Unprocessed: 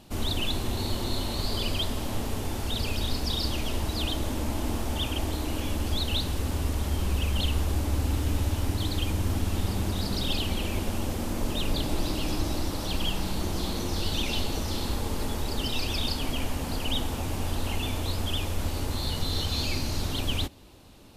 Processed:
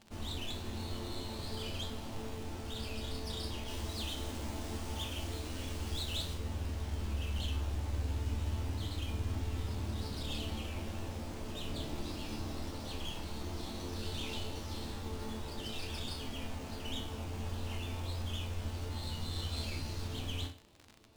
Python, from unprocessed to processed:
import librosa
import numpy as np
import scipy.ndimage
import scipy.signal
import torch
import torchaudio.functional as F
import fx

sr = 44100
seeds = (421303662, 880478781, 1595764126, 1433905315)

y = fx.high_shelf(x, sr, hz=4700.0, db=8.5, at=(3.68, 6.34))
y = fx.resonator_bank(y, sr, root=38, chord='minor', decay_s=0.4)
y = fx.dmg_crackle(y, sr, seeds[0], per_s=97.0, level_db=-45.0)
y = fx.running_max(y, sr, window=3)
y = y * 10.0 ** (2.0 / 20.0)